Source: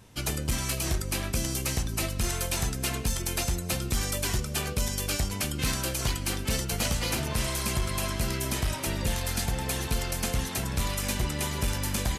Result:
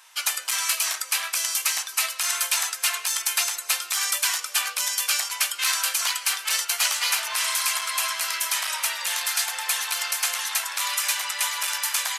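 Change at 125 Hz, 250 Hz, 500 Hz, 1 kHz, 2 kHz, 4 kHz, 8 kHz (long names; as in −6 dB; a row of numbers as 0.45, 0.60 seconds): below −40 dB, below −30 dB, −10.5 dB, +5.5 dB, +8.5 dB, +8.5 dB, +8.5 dB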